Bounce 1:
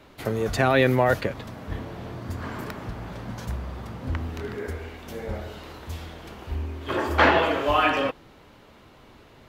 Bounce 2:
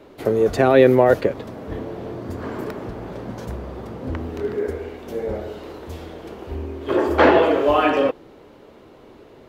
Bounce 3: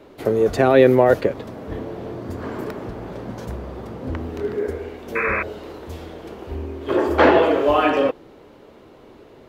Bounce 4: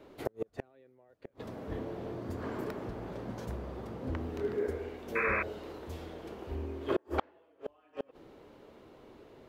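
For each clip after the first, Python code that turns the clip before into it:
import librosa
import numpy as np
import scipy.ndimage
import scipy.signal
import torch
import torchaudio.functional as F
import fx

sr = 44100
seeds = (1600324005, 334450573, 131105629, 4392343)

y1 = fx.peak_eq(x, sr, hz=410.0, db=12.5, octaves=1.7)
y1 = y1 * librosa.db_to_amplitude(-2.0)
y2 = fx.spec_paint(y1, sr, seeds[0], shape='noise', start_s=5.15, length_s=0.28, low_hz=970.0, high_hz=2600.0, level_db=-23.0)
y3 = fx.gate_flip(y2, sr, shuts_db=-9.0, range_db=-40)
y3 = y3 * librosa.db_to_amplitude(-8.5)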